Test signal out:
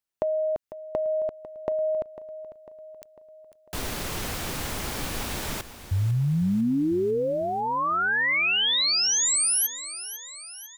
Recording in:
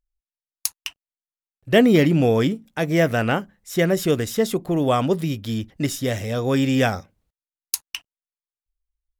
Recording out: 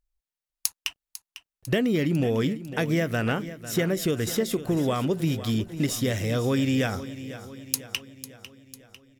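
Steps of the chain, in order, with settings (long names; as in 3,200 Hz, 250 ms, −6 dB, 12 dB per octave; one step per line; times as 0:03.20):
downward compressor, threshold −22 dBFS
dynamic equaliser 750 Hz, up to −5 dB, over −38 dBFS, Q 1.4
on a send: repeating echo 499 ms, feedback 55%, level −14 dB
on the sum: level +1.5 dB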